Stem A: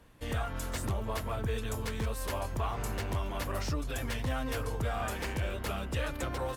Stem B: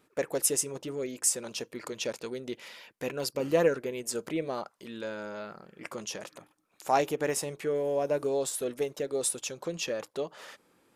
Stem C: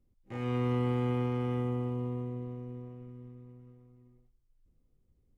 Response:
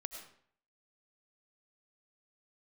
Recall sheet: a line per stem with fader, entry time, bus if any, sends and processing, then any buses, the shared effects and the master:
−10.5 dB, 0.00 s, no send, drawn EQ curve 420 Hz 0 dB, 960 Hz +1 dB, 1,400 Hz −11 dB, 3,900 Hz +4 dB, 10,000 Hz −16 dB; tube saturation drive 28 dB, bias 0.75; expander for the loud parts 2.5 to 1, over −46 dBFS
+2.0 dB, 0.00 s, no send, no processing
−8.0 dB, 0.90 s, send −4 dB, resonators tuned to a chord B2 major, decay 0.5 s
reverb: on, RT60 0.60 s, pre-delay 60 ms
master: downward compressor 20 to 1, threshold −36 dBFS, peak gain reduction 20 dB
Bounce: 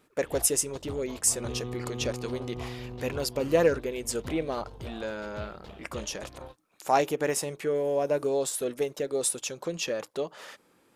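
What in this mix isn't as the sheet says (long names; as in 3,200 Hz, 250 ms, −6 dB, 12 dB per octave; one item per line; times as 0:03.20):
stem A −10.5 dB → −0.5 dB
stem C −8.0 dB → −1.5 dB
master: missing downward compressor 20 to 1, threshold −36 dBFS, peak gain reduction 20 dB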